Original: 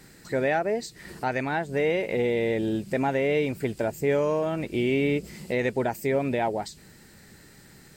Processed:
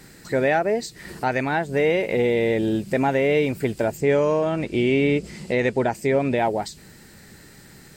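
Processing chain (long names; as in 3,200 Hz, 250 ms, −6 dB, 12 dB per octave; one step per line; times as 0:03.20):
0:03.97–0:06.38: low-pass filter 8,700 Hz 12 dB per octave
level +4.5 dB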